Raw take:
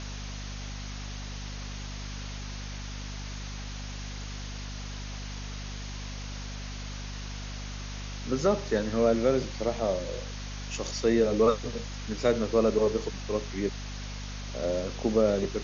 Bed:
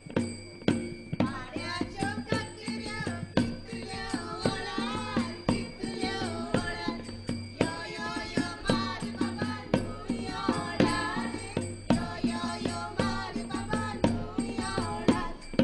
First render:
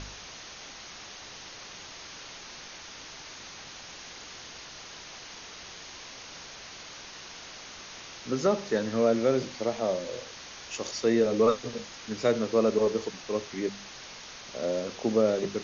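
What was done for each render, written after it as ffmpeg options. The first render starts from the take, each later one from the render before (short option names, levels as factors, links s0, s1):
-af "bandreject=f=50:t=h:w=4,bandreject=f=100:t=h:w=4,bandreject=f=150:t=h:w=4,bandreject=f=200:t=h:w=4,bandreject=f=250:t=h:w=4"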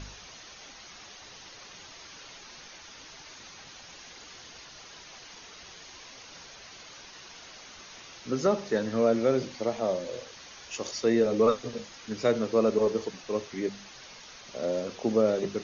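-af "afftdn=nr=6:nf=-45"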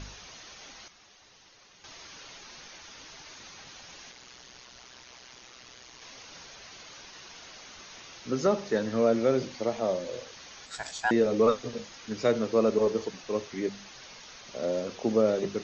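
-filter_complex "[0:a]asettb=1/sr,asplit=3[s0][s1][s2];[s0]atrim=end=4.114[s3];[s1]atrim=start=4.11:end=6.02,asetpts=PTS-STARTPTS,afade=t=in:d=0.004:c=qsin,afade=t=out:st=1.906:d=0.004:c=qsin,aeval=exprs='val(0)*sin(2*PI*62*n/s)':c=same[s4];[s2]atrim=start=6.016[s5];[s3][s4]acrossfade=d=0.004:c1=hsin:c2=qsin[s6];[s6][s5]acrossfade=d=0.004:c1=qsin:c2=hsin,asettb=1/sr,asplit=3[s7][s8][s9];[s7]atrim=end=10.664[s10];[s8]atrim=start=10.66:end=11.11,asetpts=PTS-STARTPTS,afade=t=in:d=0.004:c=qsin,afade=t=out:st=0.446:d=0.004:c=qsin,aeval=exprs='val(0)*sin(2*PI*1200*n/s)':c=same[s11];[s9]atrim=start=11.106[s12];[s10][s11]acrossfade=d=0.004:c1=hsin:c2=qsin[s13];[s13][s12]acrossfade=d=0.004:c1=qsin:c2=hsin,asplit=3[s14][s15][s16];[s14]atrim=end=0.882[s17];[s15]atrim=start=0.878:end=1.842,asetpts=PTS-STARTPTS,volume=0.335[s18];[s16]atrim=start=1.838[s19];[s17][s18]acrossfade=d=0.004:c1=hsin:c2=hsin[s20];[s20][s19]acrossfade=d=0.004:c1=hsin:c2=hsin"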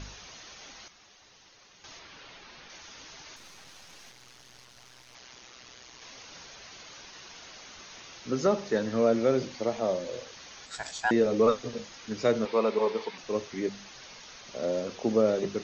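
-filter_complex "[0:a]asettb=1/sr,asplit=3[s0][s1][s2];[s0]atrim=end=1.994[s3];[s1]atrim=start=1.99:end=2.7,asetpts=PTS-STARTPTS,afade=t=in:d=0.004:c=qsin,afade=t=out:st=0.706:d=0.004:c=qsin,lowpass=4000[s4];[s2]atrim=start=2.696[s5];[s3][s4]acrossfade=d=0.004:c1=hsin:c2=qsin[s6];[s6][s5]acrossfade=d=0.004:c1=qsin:c2=hsin,asettb=1/sr,asplit=3[s7][s8][s9];[s7]atrim=end=3.364[s10];[s8]atrim=start=3.36:end=5.15,asetpts=PTS-STARTPTS,afade=t=in:d=0.004:c=qsin,afade=t=out:st=1.786:d=0.004:c=qsin,aeval=exprs='if(lt(val(0),0),0.251*val(0),val(0))':c=same[s11];[s9]atrim=start=5.146[s12];[s10][s11]acrossfade=d=0.004:c1=hsin:c2=qsin[s13];[s13][s12]acrossfade=d=0.004:c1=qsin:c2=hsin,asettb=1/sr,asplit=3[s14][s15][s16];[s14]atrim=end=12.454[s17];[s15]atrim=start=12.45:end=13.18,asetpts=PTS-STARTPTS,afade=t=in:d=0.004:c=qsin,afade=t=out:st=0.726:d=0.004:c=qsin,highpass=250,equalizer=f=310:t=q:w=4:g=-8,equalizer=f=590:t=q:w=4:g=-3,equalizer=f=930:t=q:w=4:g=9,equalizer=f=2200:t=q:w=4:g=8,equalizer=f=3600:t=q:w=4:g=4,lowpass=f=5200:w=0.5412,lowpass=f=5200:w=1.3066[s18];[s16]atrim=start=13.176[s19];[s17][s18]acrossfade=d=0.004:c1=hsin:c2=qsin[s20];[s20][s19]acrossfade=d=0.004:c1=qsin:c2=hsin"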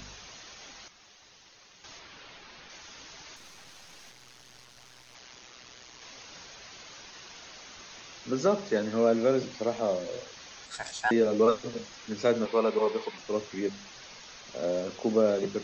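-filter_complex "[0:a]acrossover=split=130|1800[s0][s1][s2];[s0]alimiter=level_in=16.8:limit=0.0631:level=0:latency=1,volume=0.0596[s3];[s2]acompressor=mode=upward:threshold=0.00224:ratio=2.5[s4];[s3][s1][s4]amix=inputs=3:normalize=0"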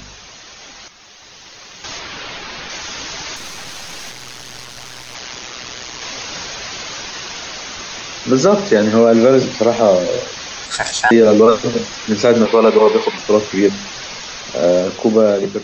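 -af "dynaudnorm=f=390:g=7:m=3.55,alimiter=level_in=2.82:limit=0.891:release=50:level=0:latency=1"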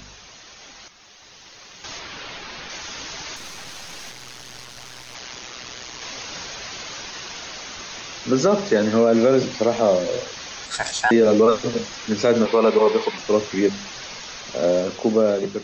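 -af "volume=0.501"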